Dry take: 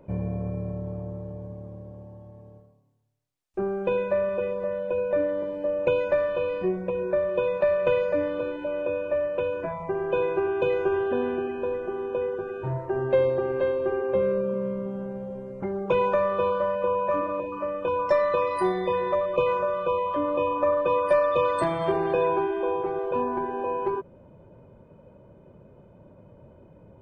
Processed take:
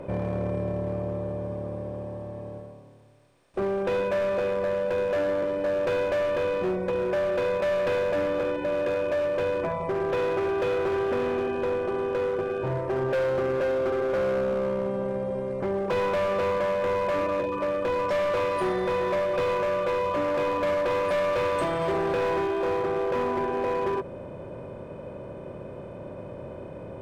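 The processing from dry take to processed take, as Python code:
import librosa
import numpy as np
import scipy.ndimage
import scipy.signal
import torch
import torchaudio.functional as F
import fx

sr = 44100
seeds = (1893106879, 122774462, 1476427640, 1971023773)

y = fx.bin_compress(x, sr, power=0.6)
y = np.clip(10.0 ** (20.5 / 20.0) * y, -1.0, 1.0) / 10.0 ** (20.5 / 20.0)
y = F.gain(torch.from_numpy(y), -2.0).numpy()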